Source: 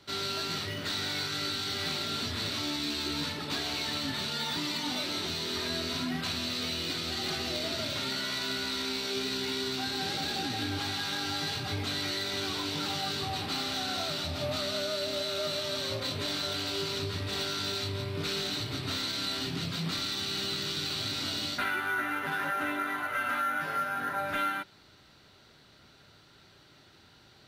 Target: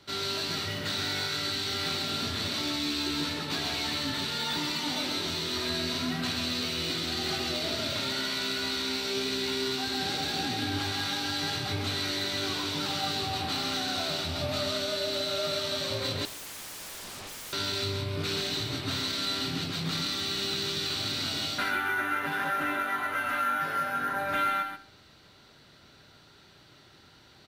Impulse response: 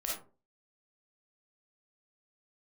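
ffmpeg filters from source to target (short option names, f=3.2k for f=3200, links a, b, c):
-filter_complex "[0:a]asplit=2[a][b];[b]aecho=0:1:134:0.501[c];[a][c]amix=inputs=2:normalize=0,asettb=1/sr,asplit=3[d][e][f];[d]atrim=end=16.254[g];[e]atrim=start=16.25:end=17.53,asetpts=PTS-STARTPTS,afade=t=in:d=0.004:c=qsin,afade=t=out:st=1.276:d=0.004:c=qsin,aeval=exprs='0.0126*(abs(mod(val(0)/0.0126+3,4)-2)-1)':c=same[h];[f]atrim=start=17.526[i];[g][h]acrossfade=d=0.004:c1=hsin:c2=qsin[j];[j][i]acrossfade=d=0.004:c1=qsin:c2=hsin,asplit=2[k][l];[1:a]atrim=start_sample=2205,asetrate=31311,aresample=44100[m];[l][m]afir=irnorm=-1:irlink=0,volume=-18.5dB[n];[k][n]amix=inputs=2:normalize=0"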